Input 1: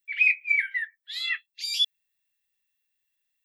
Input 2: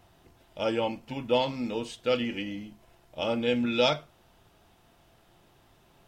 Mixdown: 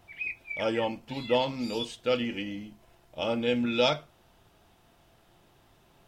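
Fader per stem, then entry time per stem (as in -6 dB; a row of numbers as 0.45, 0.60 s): -14.0, -0.5 dB; 0.00, 0.00 s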